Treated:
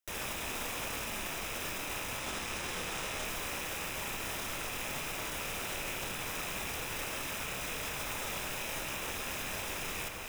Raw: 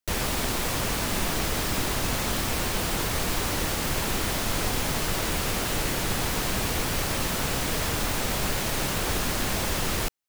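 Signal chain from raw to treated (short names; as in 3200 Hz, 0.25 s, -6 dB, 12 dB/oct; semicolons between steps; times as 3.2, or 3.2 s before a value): rattling part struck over -34 dBFS, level -18 dBFS; low shelf 350 Hz -9 dB; echo with dull and thin repeats by turns 0.179 s, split 1600 Hz, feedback 73%, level -13 dB; limiter -27.5 dBFS, peak gain reduction 13.5 dB; 2.19–3.25 careless resampling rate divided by 3×, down none, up hold; notch 4400 Hz, Q 5.3; on a send at -4 dB: reverb RT60 0.45 s, pre-delay 19 ms; on the sum: gain -1.5 dB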